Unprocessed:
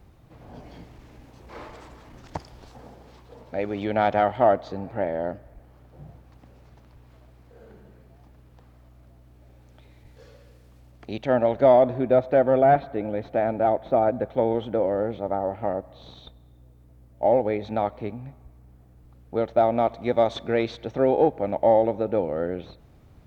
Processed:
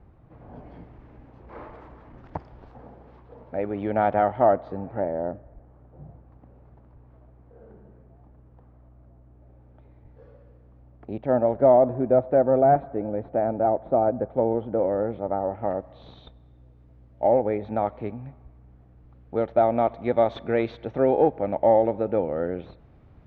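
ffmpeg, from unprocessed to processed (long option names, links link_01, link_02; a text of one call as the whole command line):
ffmpeg -i in.wav -af "asetnsamples=nb_out_samples=441:pad=0,asendcmd='5 lowpass f 1100;14.79 lowpass f 1700;15.71 lowpass f 3000;17.27 lowpass f 1800;17.87 lowpass f 2500',lowpass=1600" out.wav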